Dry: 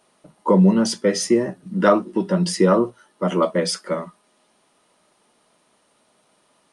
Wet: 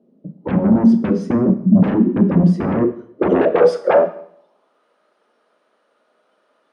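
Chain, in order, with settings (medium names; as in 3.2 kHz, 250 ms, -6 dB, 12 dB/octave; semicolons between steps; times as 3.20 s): high-pass 42 Hz; spectral noise reduction 10 dB; graphic EQ 250/500/1000/2000/8000 Hz +6/+10/-8/-6/-4 dB; compression 12:1, threshold -12 dBFS, peak gain reduction 10 dB; sine folder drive 16 dB, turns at -3.5 dBFS; band-pass sweep 210 Hz -> 1.4 kHz, 2.60–4.85 s; on a send: reverberation RT60 0.65 s, pre-delay 27 ms, DRR 11.5 dB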